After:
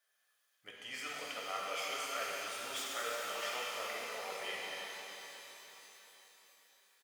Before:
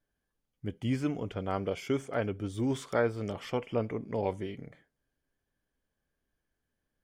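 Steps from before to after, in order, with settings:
stylus tracing distortion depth 0.053 ms
comb filter 1.6 ms, depth 41%
reversed playback
downward compressor, threshold −38 dBFS, peak gain reduction 16 dB
reversed playback
high-pass filter 1,300 Hz 12 dB per octave
reverb with rising layers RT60 4 s, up +12 semitones, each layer −8 dB, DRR −4.5 dB
level +8 dB

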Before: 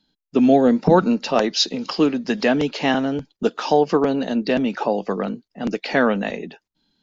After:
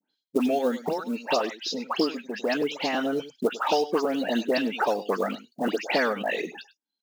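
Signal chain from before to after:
noise gate with hold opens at −33 dBFS
high-pass filter 320 Hz 12 dB per octave
reverb reduction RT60 0.68 s
downward compressor 3 to 1, threshold −23 dBFS, peak gain reduction 10 dB
0:00.48–0:02.93: shaped tremolo triangle 1.5 Hz, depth 70%
all-pass dispersion highs, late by 120 ms, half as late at 2,300 Hz
floating-point word with a short mantissa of 4 bits
slap from a distant wall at 17 metres, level −17 dB
multiband upward and downward compressor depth 40%
level +2 dB

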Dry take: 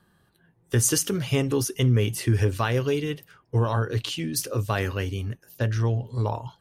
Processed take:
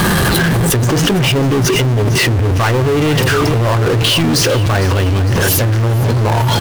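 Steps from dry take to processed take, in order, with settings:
treble cut that deepens with the level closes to 810 Hz, closed at −17.5 dBFS
power curve on the samples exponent 0.35
repeating echo 455 ms, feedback 56%, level −12 dB
envelope flattener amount 100%

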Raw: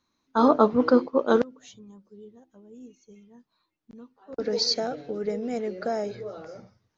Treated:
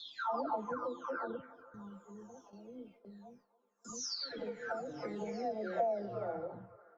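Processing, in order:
every frequency bin delayed by itself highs early, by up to 836 ms
noise gate with hold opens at −51 dBFS
downward compressor 16 to 1, threshold −38 dBFS, peak gain reduction 22.5 dB
on a send: delay with a band-pass on its return 285 ms, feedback 64%, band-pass 880 Hz, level −17 dB
on the sum: auto-filter bell 0.34 Hz 640–1,500 Hz +11 dB

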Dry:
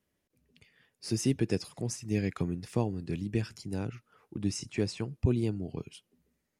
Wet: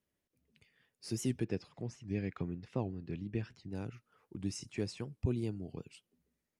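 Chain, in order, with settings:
0:01.44–0:03.75: low-pass filter 3,400 Hz 12 dB per octave
wow of a warped record 78 rpm, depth 160 cents
level −6.5 dB

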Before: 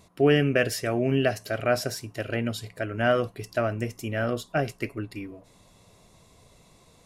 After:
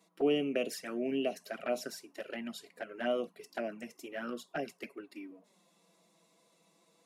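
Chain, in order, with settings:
Butterworth high-pass 180 Hz 48 dB per octave
flanger swept by the level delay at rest 6.4 ms, full sweep at −20.5 dBFS
level −7.5 dB

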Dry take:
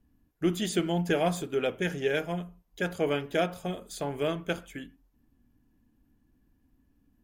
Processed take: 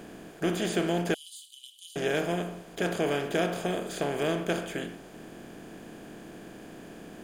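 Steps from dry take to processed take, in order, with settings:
compressor on every frequency bin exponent 0.4
0:01.14–0:01.96: Chebyshev high-pass with heavy ripple 2,900 Hz, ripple 9 dB
level −5 dB

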